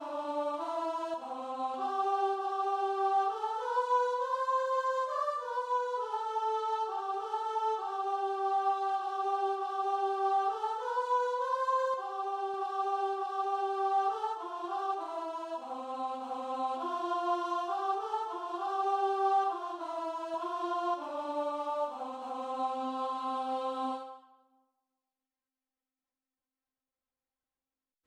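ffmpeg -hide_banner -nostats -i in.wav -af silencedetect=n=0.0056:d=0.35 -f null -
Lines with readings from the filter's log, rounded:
silence_start: 24.17
silence_end: 28.06 | silence_duration: 3.89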